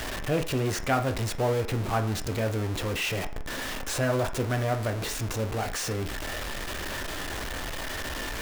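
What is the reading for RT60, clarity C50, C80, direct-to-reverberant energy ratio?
0.50 s, 12.5 dB, 17.0 dB, 6.0 dB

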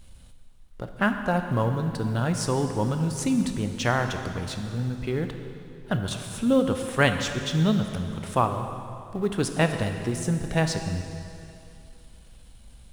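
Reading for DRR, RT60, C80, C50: 6.0 dB, 2.7 s, 8.0 dB, 7.0 dB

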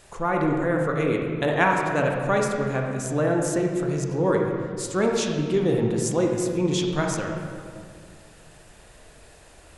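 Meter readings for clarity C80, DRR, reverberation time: 3.5 dB, 0.5 dB, 2.1 s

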